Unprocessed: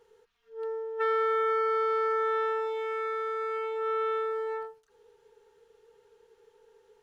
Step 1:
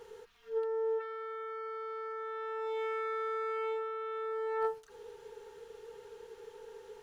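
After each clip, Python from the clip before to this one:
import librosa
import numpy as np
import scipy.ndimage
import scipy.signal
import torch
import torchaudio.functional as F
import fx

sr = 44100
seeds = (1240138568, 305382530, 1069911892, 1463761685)

y = fx.over_compress(x, sr, threshold_db=-39.0, ratio=-1.0)
y = y * librosa.db_to_amplitude(2.0)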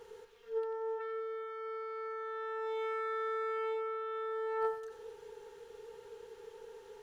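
y = fx.echo_split(x, sr, split_hz=520.0, low_ms=215, high_ms=92, feedback_pct=52, wet_db=-11.0)
y = y * librosa.db_to_amplitude(-1.5)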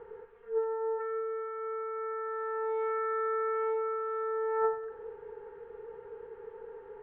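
y = scipy.signal.sosfilt(scipy.signal.butter(4, 1800.0, 'lowpass', fs=sr, output='sos'), x)
y = y * librosa.db_to_amplitude(5.0)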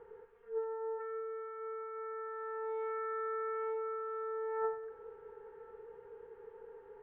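y = x + 10.0 ** (-22.0 / 20.0) * np.pad(x, (int(1040 * sr / 1000.0), 0))[:len(x)]
y = y * librosa.db_to_amplitude(-6.5)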